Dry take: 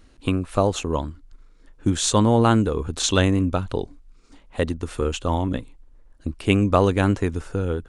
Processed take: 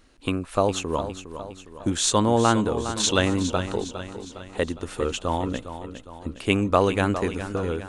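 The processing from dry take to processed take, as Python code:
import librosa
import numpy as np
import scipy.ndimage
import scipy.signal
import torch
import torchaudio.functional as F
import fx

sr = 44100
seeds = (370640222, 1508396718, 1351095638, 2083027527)

y = fx.low_shelf(x, sr, hz=230.0, db=-8.0)
y = fx.echo_feedback(y, sr, ms=409, feedback_pct=52, wet_db=-11.0)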